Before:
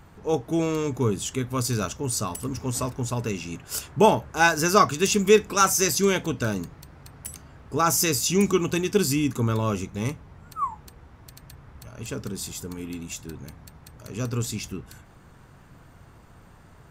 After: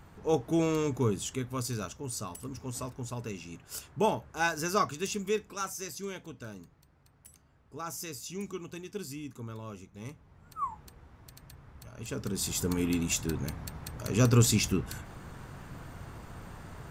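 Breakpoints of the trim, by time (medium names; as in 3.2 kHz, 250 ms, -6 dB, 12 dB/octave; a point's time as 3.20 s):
0.82 s -3 dB
1.90 s -10 dB
4.84 s -10 dB
5.80 s -17.5 dB
9.88 s -17.5 dB
10.70 s -5.5 dB
12.06 s -5.5 dB
12.69 s +5.5 dB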